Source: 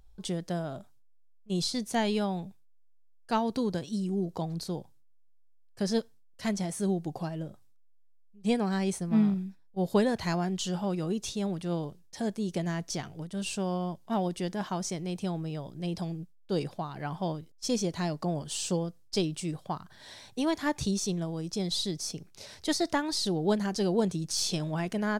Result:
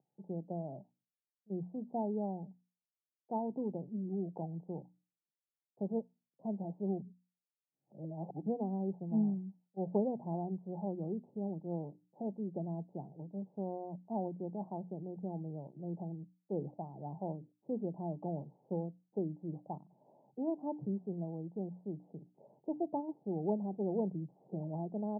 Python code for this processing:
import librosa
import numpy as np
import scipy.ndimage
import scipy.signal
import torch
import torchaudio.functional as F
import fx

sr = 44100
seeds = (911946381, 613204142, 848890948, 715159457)

y = fx.edit(x, sr, fx.reverse_span(start_s=7.0, length_s=1.46), tone=tone)
y = scipy.signal.sosfilt(scipy.signal.cheby1(5, 1.0, [130.0, 870.0], 'bandpass', fs=sr, output='sos'), y)
y = fx.hum_notches(y, sr, base_hz=60, count=5)
y = y * librosa.db_to_amplitude(-6.5)